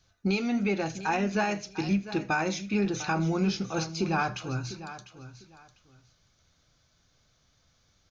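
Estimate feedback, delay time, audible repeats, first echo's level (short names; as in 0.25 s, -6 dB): no steady repeat, 79 ms, 3, -22.0 dB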